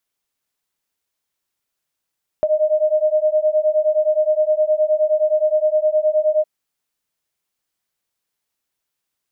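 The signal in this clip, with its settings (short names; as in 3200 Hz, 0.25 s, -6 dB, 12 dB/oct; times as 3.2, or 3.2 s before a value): beating tones 611 Hz, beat 9.6 Hz, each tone -17 dBFS 4.01 s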